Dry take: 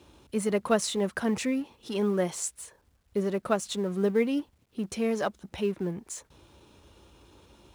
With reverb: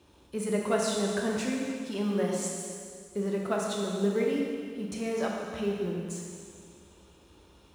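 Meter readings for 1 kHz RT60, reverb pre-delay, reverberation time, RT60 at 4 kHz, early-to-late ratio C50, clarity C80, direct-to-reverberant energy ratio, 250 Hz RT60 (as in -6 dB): 2.2 s, 17 ms, 2.2 s, 2.0 s, 0.5 dB, 2.0 dB, -1.5 dB, 2.3 s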